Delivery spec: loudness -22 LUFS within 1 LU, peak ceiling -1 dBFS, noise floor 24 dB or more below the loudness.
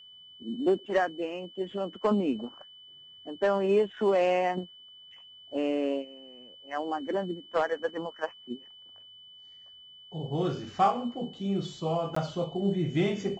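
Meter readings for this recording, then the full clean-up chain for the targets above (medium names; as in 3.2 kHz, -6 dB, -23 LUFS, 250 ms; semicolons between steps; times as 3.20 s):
dropouts 1; longest dropout 14 ms; steady tone 3 kHz; tone level -49 dBFS; loudness -30.0 LUFS; peak level -12.5 dBFS; loudness target -22.0 LUFS
-> interpolate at 12.15 s, 14 ms; band-stop 3 kHz, Q 30; trim +8 dB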